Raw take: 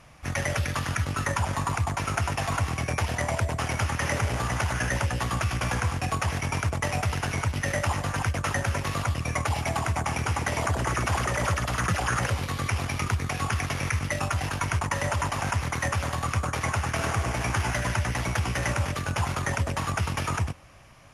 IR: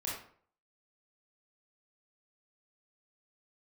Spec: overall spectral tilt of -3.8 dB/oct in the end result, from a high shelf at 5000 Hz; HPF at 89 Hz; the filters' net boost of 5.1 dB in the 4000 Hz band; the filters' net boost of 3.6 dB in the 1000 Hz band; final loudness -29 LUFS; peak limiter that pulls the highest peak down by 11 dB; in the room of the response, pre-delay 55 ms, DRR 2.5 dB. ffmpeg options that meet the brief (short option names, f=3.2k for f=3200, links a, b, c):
-filter_complex "[0:a]highpass=89,equalizer=f=1k:t=o:g=4,equalizer=f=4k:t=o:g=5.5,highshelf=f=5k:g=3,alimiter=limit=-18dB:level=0:latency=1,asplit=2[a][b];[1:a]atrim=start_sample=2205,adelay=55[c];[b][c]afir=irnorm=-1:irlink=0,volume=-5dB[d];[a][d]amix=inputs=2:normalize=0,volume=-2.5dB"